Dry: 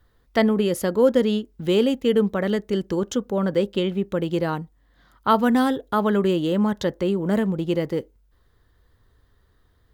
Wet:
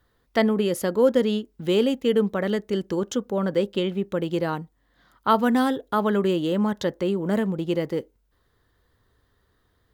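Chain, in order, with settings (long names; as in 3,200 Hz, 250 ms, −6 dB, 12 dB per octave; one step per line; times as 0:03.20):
low-shelf EQ 76 Hz −10.5 dB
level −1 dB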